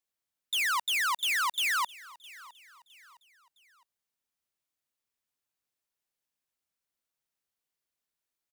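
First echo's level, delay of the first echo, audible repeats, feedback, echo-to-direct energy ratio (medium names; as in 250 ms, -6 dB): -21.0 dB, 661 ms, 2, 41%, -20.0 dB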